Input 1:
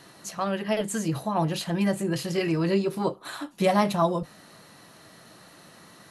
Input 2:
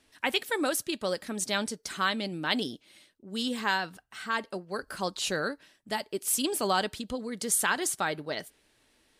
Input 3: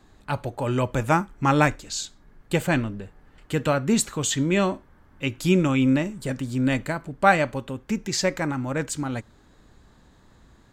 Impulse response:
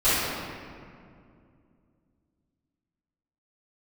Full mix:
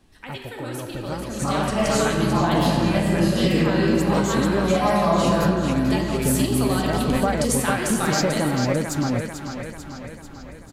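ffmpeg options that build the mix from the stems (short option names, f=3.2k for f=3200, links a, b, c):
-filter_complex "[0:a]bandreject=f=380:w=12,aeval=exprs='val(0)+0.00891*(sin(2*PI*60*n/s)+sin(2*PI*2*60*n/s)/2+sin(2*PI*3*60*n/s)/3+sin(2*PI*4*60*n/s)/4+sin(2*PI*5*60*n/s)/5)':c=same,adelay=1050,volume=-11dB,asplit=2[a][b];[b]volume=-10.5dB[c];[1:a]acrossover=split=200[d][e];[e]acompressor=threshold=-44dB:ratio=2[f];[d][f]amix=inputs=2:normalize=0,volume=-2dB,asplit=3[g][h][i];[h]volume=-16.5dB[j];[i]volume=-8dB[k];[2:a]equalizer=f=8.5k:w=2.9:g=-11.5,volume=-2dB,asplit=2[l][m];[m]volume=-16.5dB[n];[a][l]amix=inputs=2:normalize=0,equalizer=f=2.5k:w=0.67:g=-13.5,acompressor=threshold=-33dB:ratio=4,volume=0dB[o];[3:a]atrim=start_sample=2205[p];[c][j]amix=inputs=2:normalize=0[q];[q][p]afir=irnorm=-1:irlink=0[r];[k][n]amix=inputs=2:normalize=0,aecho=0:1:443|886|1329|1772|2215|2658|3101|3544|3987:1|0.57|0.325|0.185|0.106|0.0602|0.0343|0.0195|0.0111[s];[g][o][r][s]amix=inputs=4:normalize=0,dynaudnorm=f=200:g=17:m=13.5dB,alimiter=limit=-9.5dB:level=0:latency=1:release=295"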